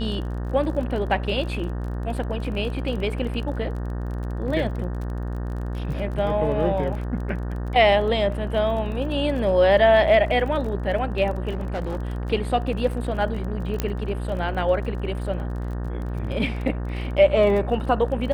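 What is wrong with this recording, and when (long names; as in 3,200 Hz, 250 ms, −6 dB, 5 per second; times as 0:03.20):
mains buzz 60 Hz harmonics 31 −28 dBFS
surface crackle 26 per second −32 dBFS
0:11.50–0:11.97: clipping −23.5 dBFS
0:13.80: click −9 dBFS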